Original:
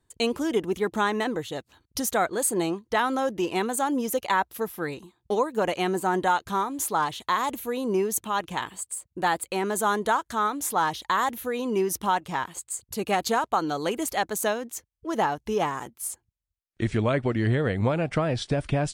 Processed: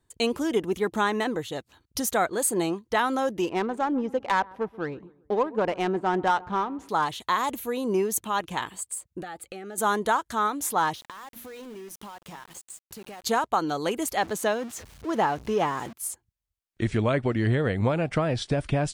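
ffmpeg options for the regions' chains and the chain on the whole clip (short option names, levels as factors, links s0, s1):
-filter_complex "[0:a]asettb=1/sr,asplit=3[s0][s1][s2];[s0]atrim=end=3.494[s3];[s1]atrim=start=3.49:end=6.89,asetpts=PTS-STARTPTS,afade=t=in:d=0.004:c=qsin,afade=t=out:st=3.396:d=0.004:c=qsin,asplit=2[s4][s5];[s5]adelay=132,lowpass=f=2000:p=1,volume=0.0944,asplit=2[s6][s7];[s7]adelay=132,lowpass=f=2000:p=1,volume=0.44,asplit=2[s8][s9];[s9]adelay=132,lowpass=f=2000:p=1,volume=0.44[s10];[s4][s6][s8][s10]amix=inputs=4:normalize=0,atrim=end_sample=149940,adynamicsmooth=sensitivity=1.5:basefreq=1300[s11];[s2]atrim=start=6.886[s12];[s3][s11]acrossfade=d=0.004:c1=hsin:c2=qsin[s13];[s13][s12]acrossfade=d=0.004:c1=qsin:c2=hsin,asettb=1/sr,asplit=3[s14][s15][s16];[s14]atrim=end=9.224[s17];[s15]atrim=start=9.22:end=9.78,asetpts=PTS-STARTPTS,afade=t=in:d=0.004:c=qsin,afade=t=out:st=0.556:d=0.004:c=qsin,highshelf=f=5800:g=-7.5,acompressor=threshold=0.0158:ratio=4:attack=3.2:release=140:knee=1:detection=peak,asuperstop=centerf=1000:order=20:qfactor=3.9[s18];[s16]atrim=start=9.776[s19];[s17][s18]acrossfade=d=0.004:c1=hsin:c2=qsin[s20];[s20][s19]acrossfade=d=0.004:c1=qsin:c2=hsin,asettb=1/sr,asplit=3[s21][s22][s23];[s21]atrim=end=10.944[s24];[s22]atrim=start=10.94:end=13.24,asetpts=PTS-STARTPTS,afade=t=in:d=0.004:c=qsin,afade=t=out:st=2.296:d=0.004:c=qsin,bandreject=f=60:t=h:w=6,bandreject=f=120:t=h:w=6,bandreject=f=180:t=h:w=6,bandreject=f=240:t=h:w=6,bandreject=f=300:t=h:w=6,bandreject=f=360:t=h:w=6,acompressor=threshold=0.0126:ratio=10:attack=3.2:release=140:knee=1:detection=peak,aeval=exprs='val(0)*gte(abs(val(0)),0.00501)':c=same[s25];[s23]atrim=start=13.236[s26];[s24][s25]acrossfade=d=0.004:c1=hsin:c2=qsin[s27];[s27][s26]acrossfade=d=0.004:c1=qsin:c2=hsin,asettb=1/sr,asplit=3[s28][s29][s30];[s28]atrim=end=14.174[s31];[s29]atrim=start=14.17:end=15.93,asetpts=PTS-STARTPTS,afade=t=in:d=0.004:c=qsin,afade=t=out:st=1.756:d=0.004:c=qsin,aeval=exprs='val(0)+0.5*0.015*sgn(val(0))':c=same,highpass=68,highshelf=f=8100:g=-11[s32];[s30]atrim=start=15.926[s33];[s31][s32]acrossfade=d=0.004:c1=hsin:c2=qsin[s34];[s34][s33]acrossfade=d=0.004:c1=qsin:c2=hsin"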